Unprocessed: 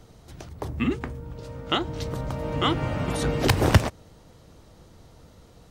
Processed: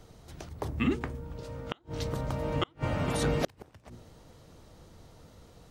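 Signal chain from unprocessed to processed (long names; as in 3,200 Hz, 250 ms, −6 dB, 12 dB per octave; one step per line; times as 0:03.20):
mains-hum notches 60/120/180/240/300/360 Hz
gate with flip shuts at −13 dBFS, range −36 dB
level −2 dB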